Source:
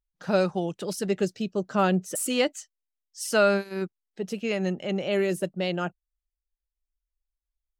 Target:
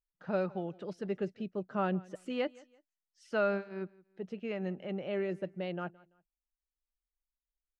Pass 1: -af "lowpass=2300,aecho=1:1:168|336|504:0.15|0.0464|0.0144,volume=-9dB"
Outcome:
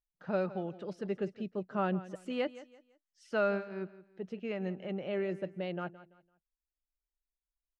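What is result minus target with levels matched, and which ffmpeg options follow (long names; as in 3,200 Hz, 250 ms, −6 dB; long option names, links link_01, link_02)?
echo-to-direct +6.5 dB
-af "lowpass=2300,aecho=1:1:168|336:0.0708|0.0219,volume=-9dB"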